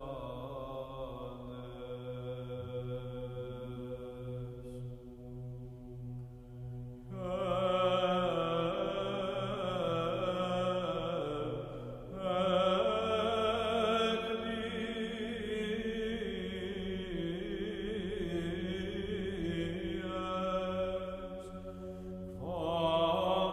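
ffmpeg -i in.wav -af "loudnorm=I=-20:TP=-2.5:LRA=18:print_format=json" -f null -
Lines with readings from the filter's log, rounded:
"input_i" : "-36.0",
"input_tp" : "-17.4",
"input_lra" : "10.0",
"input_thresh" : "-46.2",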